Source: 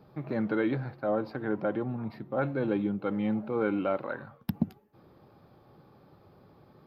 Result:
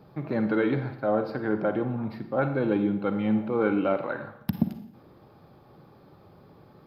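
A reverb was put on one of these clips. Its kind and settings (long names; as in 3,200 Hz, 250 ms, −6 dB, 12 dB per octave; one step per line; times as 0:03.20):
four-comb reverb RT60 0.73 s, DRR 8.5 dB
level +3.5 dB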